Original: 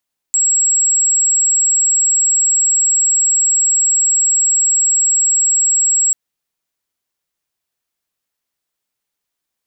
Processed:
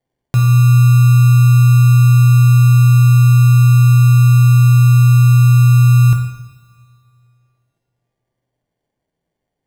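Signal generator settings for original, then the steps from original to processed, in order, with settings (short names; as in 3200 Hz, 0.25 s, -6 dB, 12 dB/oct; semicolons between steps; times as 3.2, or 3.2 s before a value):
tone sine 7660 Hz -10.5 dBFS 5.79 s
sample-and-hold 34×; two-slope reverb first 0.86 s, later 2.5 s, from -17 dB, DRR 2 dB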